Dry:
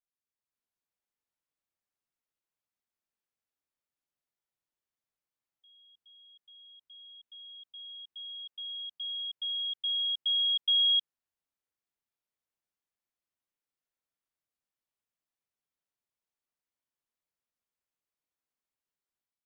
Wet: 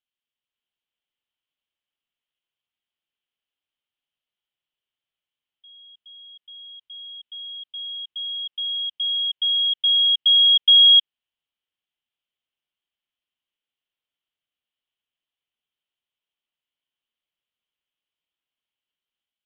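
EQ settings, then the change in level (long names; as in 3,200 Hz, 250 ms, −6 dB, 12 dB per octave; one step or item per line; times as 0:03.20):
low-pass with resonance 3,100 Hz, resonance Q 6.9
−1.0 dB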